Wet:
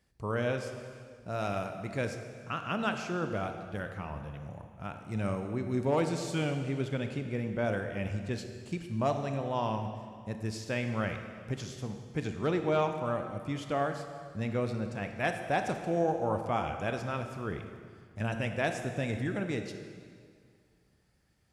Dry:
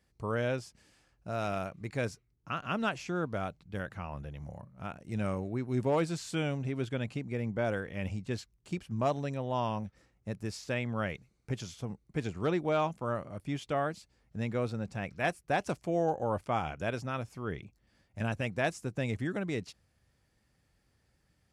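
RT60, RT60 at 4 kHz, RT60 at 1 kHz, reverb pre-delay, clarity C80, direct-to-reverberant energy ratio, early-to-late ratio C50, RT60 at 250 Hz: 2.1 s, 1.8 s, 2.0 s, 22 ms, 8.0 dB, 6.0 dB, 7.0 dB, 2.2 s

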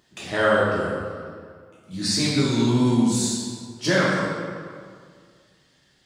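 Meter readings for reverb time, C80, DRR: 2.0 s, 0.5 dB, -8.5 dB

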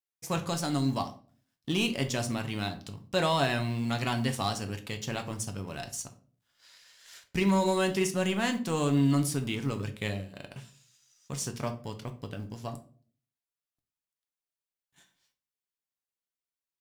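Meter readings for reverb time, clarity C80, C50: 0.45 s, 18.5 dB, 13.0 dB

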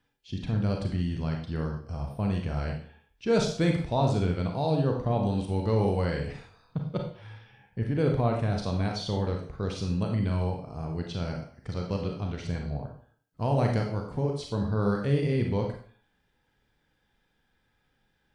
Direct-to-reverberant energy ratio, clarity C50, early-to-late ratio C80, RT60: 1.5 dB, 5.0 dB, 9.0 dB, 0.50 s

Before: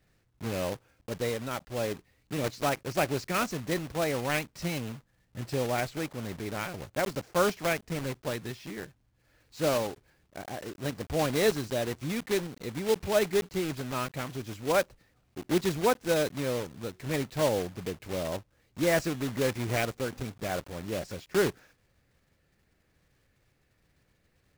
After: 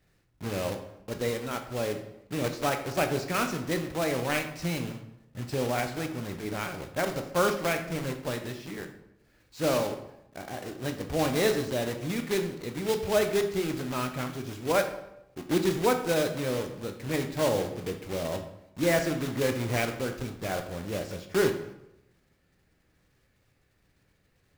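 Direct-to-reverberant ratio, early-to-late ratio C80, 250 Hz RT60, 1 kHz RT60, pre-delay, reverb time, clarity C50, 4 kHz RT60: 5.5 dB, 12.0 dB, 1.0 s, 0.80 s, 12 ms, 0.85 s, 9.0 dB, 0.60 s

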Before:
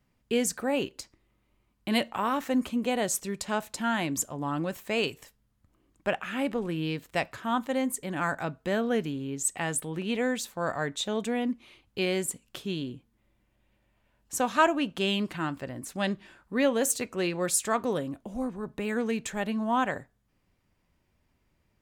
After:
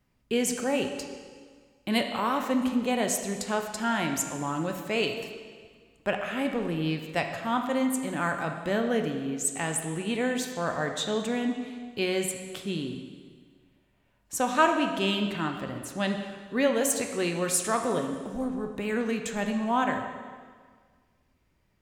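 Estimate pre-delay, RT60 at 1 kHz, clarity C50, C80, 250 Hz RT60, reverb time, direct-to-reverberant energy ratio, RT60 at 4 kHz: 6 ms, 1.7 s, 6.0 dB, 7.5 dB, 1.7 s, 1.7 s, 4.5 dB, 1.6 s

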